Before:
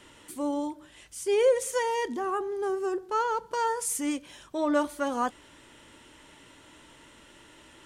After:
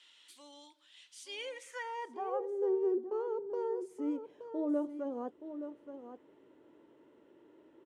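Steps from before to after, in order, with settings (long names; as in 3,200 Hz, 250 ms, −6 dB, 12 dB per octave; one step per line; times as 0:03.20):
dynamic equaliser 1,400 Hz, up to −6 dB, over −41 dBFS, Q 0.82
on a send: single-tap delay 873 ms −10 dB
on the sum: band-pass filter sweep 3,700 Hz → 390 Hz, 0:01.26–0:02.73
high-pass filter 63 Hz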